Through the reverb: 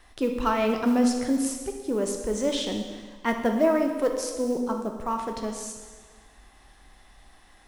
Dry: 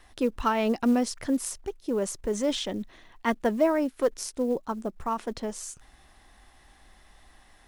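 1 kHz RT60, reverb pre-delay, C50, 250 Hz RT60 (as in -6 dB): 1.4 s, 6 ms, 5.0 dB, 1.5 s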